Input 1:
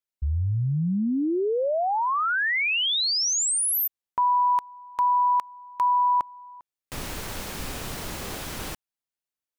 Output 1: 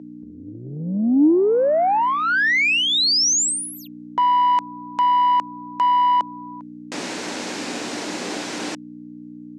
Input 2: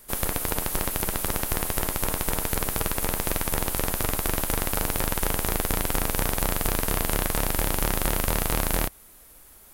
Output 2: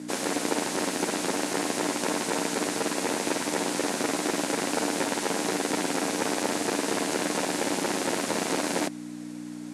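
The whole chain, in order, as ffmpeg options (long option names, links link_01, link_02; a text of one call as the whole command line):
ffmpeg -i in.wav -af "aeval=exprs='val(0)+0.0158*(sin(2*PI*60*n/s)+sin(2*PI*2*60*n/s)/2+sin(2*PI*3*60*n/s)/3+sin(2*PI*4*60*n/s)/4+sin(2*PI*5*60*n/s)/5)':channel_layout=same,asoftclip=type=tanh:threshold=-18.5dB,highpass=frequency=220:width=0.5412,highpass=frequency=220:width=1.3066,equalizer=frequency=300:width_type=q:width=4:gain=5,equalizer=frequency=1200:width_type=q:width=4:gain=-5,equalizer=frequency=3200:width_type=q:width=4:gain=-3,lowpass=frequency=7600:width=0.5412,lowpass=frequency=7600:width=1.3066,volume=8dB" out.wav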